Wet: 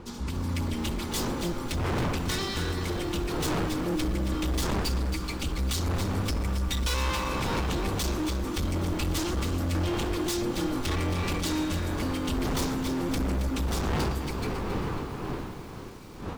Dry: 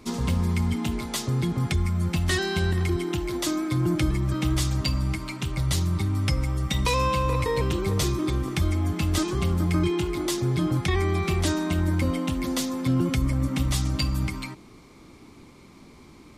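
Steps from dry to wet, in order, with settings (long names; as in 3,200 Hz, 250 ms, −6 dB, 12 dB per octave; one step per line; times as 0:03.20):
lower of the sound and its delayed copy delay 3.5 ms
wind on the microphone 610 Hz −28 dBFS
graphic EQ with 15 bands 250 Hz −4 dB, 630 Hz −12 dB, 10,000 Hz −4 dB
automatic gain control gain up to 9 dB
parametric band 1,900 Hz −5 dB 0.63 octaves
gain into a clipping stage and back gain 20.5 dB
feedback echo at a low word length 273 ms, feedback 55%, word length 7 bits, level −9 dB
level −5.5 dB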